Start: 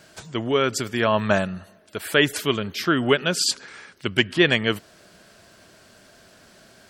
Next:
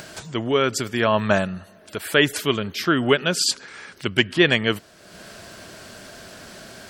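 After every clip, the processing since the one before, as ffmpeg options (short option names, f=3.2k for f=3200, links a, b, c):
-af "acompressor=mode=upward:threshold=-32dB:ratio=2.5,volume=1dB"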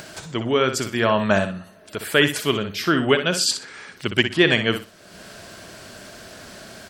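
-af "aecho=1:1:61|122|183:0.355|0.0781|0.0172"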